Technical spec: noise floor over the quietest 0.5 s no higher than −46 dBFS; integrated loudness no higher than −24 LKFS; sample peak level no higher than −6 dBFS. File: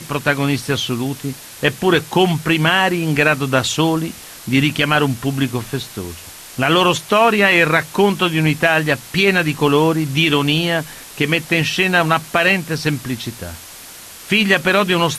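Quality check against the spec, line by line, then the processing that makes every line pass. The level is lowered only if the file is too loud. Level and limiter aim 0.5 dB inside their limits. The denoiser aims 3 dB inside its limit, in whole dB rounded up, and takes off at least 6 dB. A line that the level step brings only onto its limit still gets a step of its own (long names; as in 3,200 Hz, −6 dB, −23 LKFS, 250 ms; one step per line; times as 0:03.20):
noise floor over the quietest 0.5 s −37 dBFS: out of spec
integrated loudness −16.0 LKFS: out of spec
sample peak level −2.5 dBFS: out of spec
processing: broadband denoise 6 dB, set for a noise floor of −37 dBFS
level −8.5 dB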